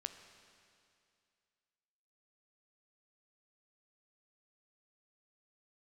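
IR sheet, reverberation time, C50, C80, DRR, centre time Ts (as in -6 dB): 2.4 s, 9.0 dB, 10.0 dB, 8.0 dB, 27 ms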